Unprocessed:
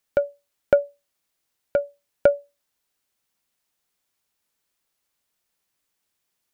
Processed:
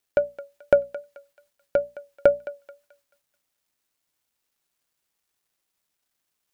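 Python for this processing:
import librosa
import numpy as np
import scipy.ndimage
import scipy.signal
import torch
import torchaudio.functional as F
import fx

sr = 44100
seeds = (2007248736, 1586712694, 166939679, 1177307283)

y = fx.echo_thinned(x, sr, ms=217, feedback_pct=40, hz=740.0, wet_db=-14)
y = fx.wow_flutter(y, sr, seeds[0], rate_hz=2.1, depth_cents=27.0)
y = fx.hum_notches(y, sr, base_hz=60, count=4)
y = fx.quant_dither(y, sr, seeds[1], bits=12, dither='none')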